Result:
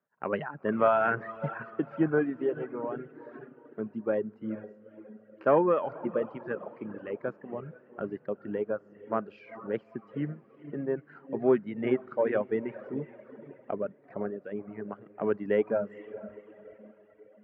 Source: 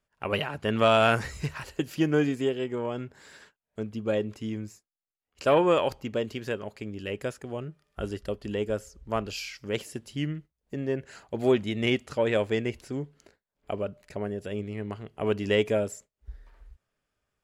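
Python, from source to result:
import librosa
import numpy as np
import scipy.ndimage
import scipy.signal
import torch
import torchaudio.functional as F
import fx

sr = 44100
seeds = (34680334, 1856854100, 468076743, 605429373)

y = scipy.signal.sosfilt(scipy.signal.cheby1(3, 1.0, 1600.0, 'lowpass', fs=sr, output='sos'), x)
y = fx.echo_diffused(y, sr, ms=455, feedback_pct=47, wet_db=-9.5)
y = fx.dereverb_blind(y, sr, rt60_s=1.8)
y = scipy.signal.sosfilt(scipy.signal.butter(4, 150.0, 'highpass', fs=sr, output='sos'), y)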